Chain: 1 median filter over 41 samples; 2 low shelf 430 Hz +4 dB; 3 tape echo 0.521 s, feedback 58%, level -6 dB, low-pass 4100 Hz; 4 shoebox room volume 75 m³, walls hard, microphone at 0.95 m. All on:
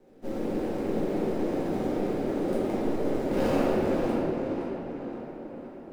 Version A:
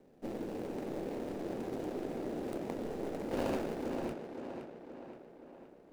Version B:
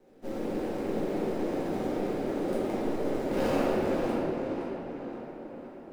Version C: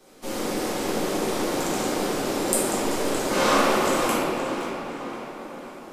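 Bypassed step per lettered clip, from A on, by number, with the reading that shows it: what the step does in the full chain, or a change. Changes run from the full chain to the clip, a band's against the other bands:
4, echo-to-direct 9.0 dB to -19.5 dB; 2, 125 Hz band -3.0 dB; 1, 8 kHz band +18.0 dB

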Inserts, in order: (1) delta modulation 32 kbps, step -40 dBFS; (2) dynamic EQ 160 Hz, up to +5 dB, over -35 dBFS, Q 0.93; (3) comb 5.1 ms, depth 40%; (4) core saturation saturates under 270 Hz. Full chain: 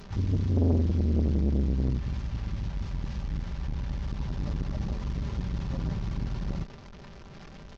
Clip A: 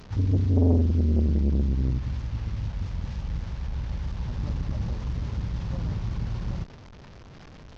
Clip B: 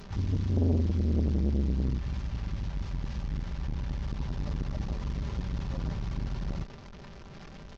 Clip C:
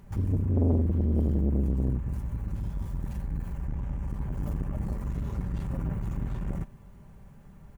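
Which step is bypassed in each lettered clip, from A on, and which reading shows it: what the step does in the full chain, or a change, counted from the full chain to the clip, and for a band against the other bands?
3, 125 Hz band +2.5 dB; 2, loudness change -2.0 LU; 1, 2 kHz band -5.0 dB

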